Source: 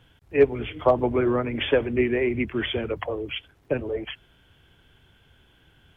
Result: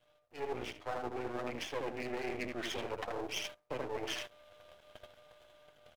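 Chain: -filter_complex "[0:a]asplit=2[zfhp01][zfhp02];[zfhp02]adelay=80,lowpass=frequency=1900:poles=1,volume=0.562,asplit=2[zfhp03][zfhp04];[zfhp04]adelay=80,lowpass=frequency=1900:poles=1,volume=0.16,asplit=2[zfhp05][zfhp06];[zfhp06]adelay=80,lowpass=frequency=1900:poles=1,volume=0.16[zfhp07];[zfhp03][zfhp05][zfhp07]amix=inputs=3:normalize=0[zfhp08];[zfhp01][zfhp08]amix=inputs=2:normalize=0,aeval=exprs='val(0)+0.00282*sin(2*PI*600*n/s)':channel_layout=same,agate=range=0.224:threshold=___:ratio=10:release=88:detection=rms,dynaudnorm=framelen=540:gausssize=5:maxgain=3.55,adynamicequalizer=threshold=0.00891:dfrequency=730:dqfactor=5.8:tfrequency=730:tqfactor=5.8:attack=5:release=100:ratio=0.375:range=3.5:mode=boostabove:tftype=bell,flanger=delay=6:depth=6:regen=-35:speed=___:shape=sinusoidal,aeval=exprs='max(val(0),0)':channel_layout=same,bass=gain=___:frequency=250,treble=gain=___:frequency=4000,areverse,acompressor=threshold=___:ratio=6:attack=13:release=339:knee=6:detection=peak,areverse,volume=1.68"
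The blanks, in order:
0.00355, 0.55, -9, 4, 0.00891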